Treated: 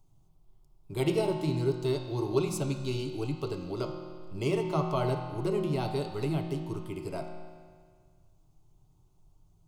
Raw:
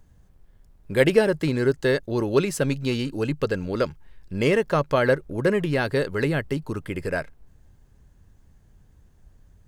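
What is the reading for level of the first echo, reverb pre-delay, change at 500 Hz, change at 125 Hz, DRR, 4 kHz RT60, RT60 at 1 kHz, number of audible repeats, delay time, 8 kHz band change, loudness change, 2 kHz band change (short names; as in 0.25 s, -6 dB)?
none, 6 ms, -9.0 dB, -4.5 dB, 2.5 dB, 1.7 s, 1.8 s, none, none, -6.0 dB, -8.0 dB, -17.5 dB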